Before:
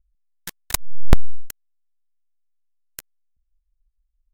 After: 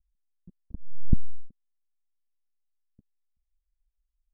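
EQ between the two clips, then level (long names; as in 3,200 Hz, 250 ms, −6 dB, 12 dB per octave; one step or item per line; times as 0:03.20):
transistor ladder low-pass 280 Hz, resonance 40%
0.0 dB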